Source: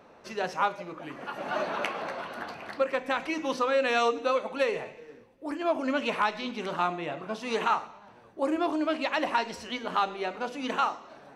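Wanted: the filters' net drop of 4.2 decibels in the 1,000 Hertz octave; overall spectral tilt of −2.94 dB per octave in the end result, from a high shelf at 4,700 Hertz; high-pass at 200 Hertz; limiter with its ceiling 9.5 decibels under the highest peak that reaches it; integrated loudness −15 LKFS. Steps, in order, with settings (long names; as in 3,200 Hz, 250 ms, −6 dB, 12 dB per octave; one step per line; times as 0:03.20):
high-pass filter 200 Hz
parametric band 1,000 Hz −6 dB
high-shelf EQ 4,700 Hz +8 dB
level +19.5 dB
brickwall limiter −3.5 dBFS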